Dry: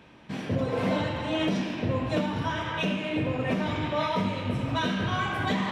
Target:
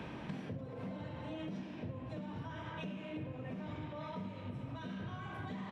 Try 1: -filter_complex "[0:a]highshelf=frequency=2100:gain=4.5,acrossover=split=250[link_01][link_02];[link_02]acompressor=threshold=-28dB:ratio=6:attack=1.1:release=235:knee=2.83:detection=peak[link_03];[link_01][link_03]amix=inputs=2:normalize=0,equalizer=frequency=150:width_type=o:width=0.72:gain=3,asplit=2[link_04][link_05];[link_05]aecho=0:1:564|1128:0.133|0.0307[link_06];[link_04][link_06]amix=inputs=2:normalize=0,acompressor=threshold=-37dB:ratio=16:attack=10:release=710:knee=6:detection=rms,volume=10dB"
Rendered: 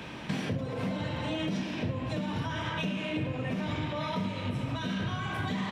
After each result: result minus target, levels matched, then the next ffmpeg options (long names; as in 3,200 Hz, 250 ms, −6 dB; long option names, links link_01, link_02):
downward compressor: peak gain reduction −10.5 dB; 4,000 Hz band +5.5 dB
-filter_complex "[0:a]highshelf=frequency=2100:gain=4.5,acrossover=split=250[link_01][link_02];[link_02]acompressor=threshold=-28dB:ratio=6:attack=1.1:release=235:knee=2.83:detection=peak[link_03];[link_01][link_03]amix=inputs=2:normalize=0,equalizer=frequency=150:width_type=o:width=0.72:gain=3,asplit=2[link_04][link_05];[link_05]aecho=0:1:564|1128:0.133|0.0307[link_06];[link_04][link_06]amix=inputs=2:normalize=0,acompressor=threshold=-48.5dB:ratio=16:attack=10:release=710:knee=6:detection=rms,volume=10dB"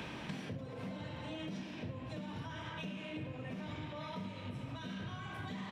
4,000 Hz band +6.0 dB
-filter_complex "[0:a]highshelf=frequency=2100:gain=-7,acrossover=split=250[link_01][link_02];[link_02]acompressor=threshold=-28dB:ratio=6:attack=1.1:release=235:knee=2.83:detection=peak[link_03];[link_01][link_03]amix=inputs=2:normalize=0,equalizer=frequency=150:width_type=o:width=0.72:gain=3,asplit=2[link_04][link_05];[link_05]aecho=0:1:564|1128:0.133|0.0307[link_06];[link_04][link_06]amix=inputs=2:normalize=0,acompressor=threshold=-48.5dB:ratio=16:attack=10:release=710:knee=6:detection=rms,volume=10dB"